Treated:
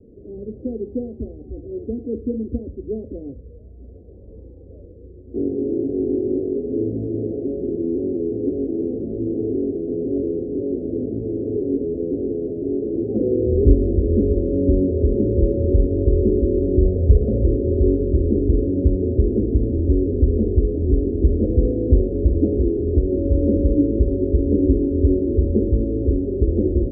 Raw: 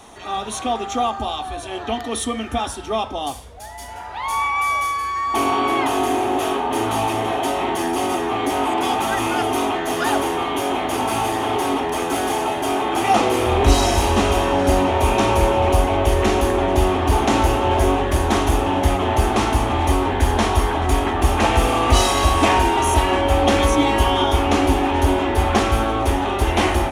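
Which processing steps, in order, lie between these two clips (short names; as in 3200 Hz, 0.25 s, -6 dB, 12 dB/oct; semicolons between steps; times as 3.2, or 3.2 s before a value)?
steep low-pass 510 Hz 72 dB/oct; 16.85–17.44 comb 1.6 ms, depth 81%; gain +2 dB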